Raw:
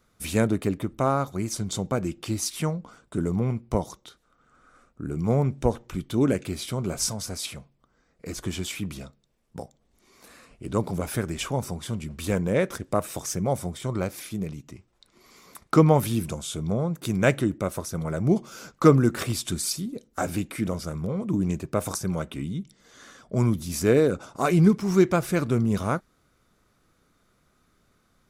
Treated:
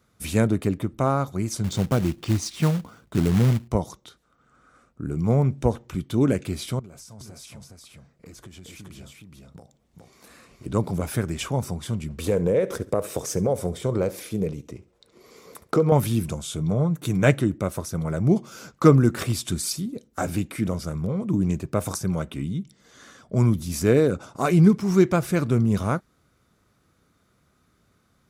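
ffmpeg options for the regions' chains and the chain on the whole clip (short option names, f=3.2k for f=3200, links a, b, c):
-filter_complex "[0:a]asettb=1/sr,asplit=3[a][b][c];[a]atrim=end=1.644[d];[b]atrim=start=1.64:end=3.68,asetpts=PTS-STARTPTS,afade=t=in:d=0.004:c=qsin,afade=t=out:st=2.036:d=0.004:c=qsin,lowpass=6.5k,lowshelf=f=270:g=5,acrusher=bits=3:mode=log:mix=0:aa=0.000001[e];[c]atrim=start=3.676[f];[d][e]acrossfade=d=0.004:c1=hsin:c2=qsin[g];[g][f]acrossfade=d=0.004:c1=qsin:c2=hsin,asettb=1/sr,asplit=3[h][i][j];[h]atrim=end=6.794[k];[i]atrim=start=6.79:end=10.66,asetpts=PTS-STARTPTS,afade=t=in:d=0.004:c=qsin,afade=t=out:st=3.866:d=0.004:c=qsin,acompressor=threshold=-42dB:ratio=12:attack=3.2:release=140:knee=1:detection=peak,aecho=1:1:418:0.708,atrim=end_sample=170667[l];[j]atrim=start=10.656[m];[k][l]acrossfade=d=0.004:c1=hsin:c2=qsin[n];[n][m]acrossfade=d=0.004:c1=qsin:c2=hsin,asettb=1/sr,asplit=3[o][p][q];[o]atrim=end=12.184[r];[p]atrim=start=12.18:end=15.92,asetpts=PTS-STARTPTS,afade=t=in:d=0.004:c=qsin,afade=t=out:st=3.736:d=0.004:c=qsin,equalizer=f=470:w=2.2:g=13.5,acompressor=threshold=-20dB:ratio=3:attack=3.2:release=140:knee=1:detection=peak,aecho=1:1:69|138:0.119|0.0297,atrim=end_sample=164934[s];[q]atrim=start=15.916[t];[r][s]acrossfade=d=0.004:c1=hsin:c2=qsin[u];[u][t]acrossfade=d=0.004:c1=qsin:c2=hsin,asettb=1/sr,asplit=3[v][w][x];[v]atrim=end=16.604[y];[w]atrim=start=16.6:end=17.33,asetpts=PTS-STARTPTS,afade=t=in:d=0.004:c=qsin,afade=t=out:st=0.726:d=0.004:c=qsin,bandreject=f=4.9k:w=8.4,aecho=1:1:6.7:0.41,atrim=end_sample=32193[z];[x]atrim=start=17.326[aa];[y][z]acrossfade=d=0.004:c1=hsin:c2=qsin[ab];[ab][aa]acrossfade=d=0.004:c1=qsin:c2=hsin,highpass=78,lowshelf=f=110:g=10"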